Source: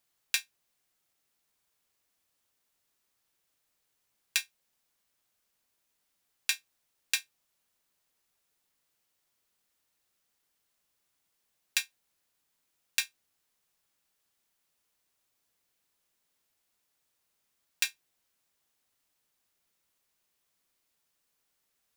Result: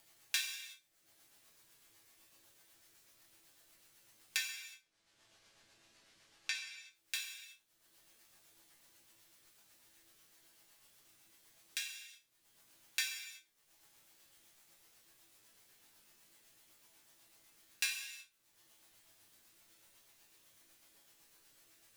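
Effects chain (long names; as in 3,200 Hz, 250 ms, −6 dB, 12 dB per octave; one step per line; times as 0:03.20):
0:04.37–0:06.55: low-pass filter 5,900 Hz 12 dB per octave
upward compression, threshold −44 dBFS
rotating-speaker cabinet horn 8 Hz
resonators tuned to a chord A2 major, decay 0.25 s
soft clipping −22.5 dBFS, distortion −27 dB
reverb whose tail is shaped and stops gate 400 ms falling, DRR 2.5 dB
level +8 dB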